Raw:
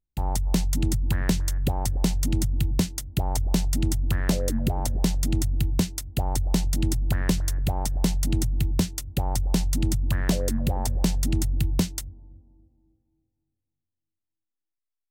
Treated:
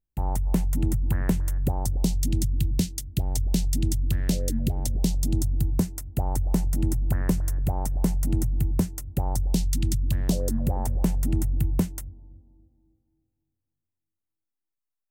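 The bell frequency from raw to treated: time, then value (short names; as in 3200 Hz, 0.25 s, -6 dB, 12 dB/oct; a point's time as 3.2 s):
bell -14 dB 1.7 oct
1.56 s 4400 Hz
2.23 s 1100 Hz
4.87 s 1100 Hz
5.9 s 3700 Hz
9.28 s 3700 Hz
9.78 s 610 Hz
10.77 s 4200 Hz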